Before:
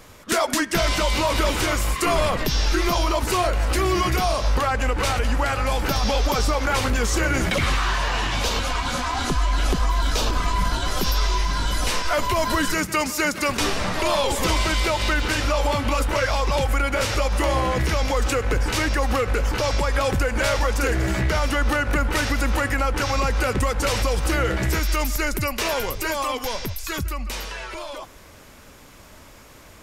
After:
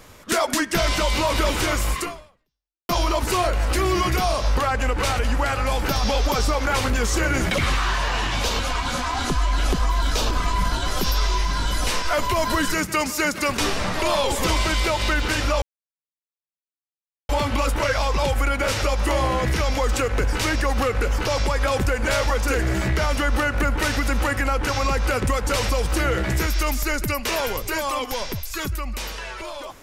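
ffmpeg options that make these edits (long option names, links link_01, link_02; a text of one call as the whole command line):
ffmpeg -i in.wav -filter_complex "[0:a]asplit=3[link_01][link_02][link_03];[link_01]atrim=end=2.89,asetpts=PTS-STARTPTS,afade=type=out:start_time=1.99:duration=0.9:curve=exp[link_04];[link_02]atrim=start=2.89:end=15.62,asetpts=PTS-STARTPTS,afade=type=in:duration=0.004:curve=hsin,afade=type=out:start_time=12.726:duration=0.004:curve=hsin,apad=pad_dur=1.67[link_05];[link_03]atrim=start=15.62,asetpts=PTS-STARTPTS,afade=type=in:duration=0.004:curve=hsin[link_06];[link_04][link_05][link_06]concat=n=3:v=0:a=1" out.wav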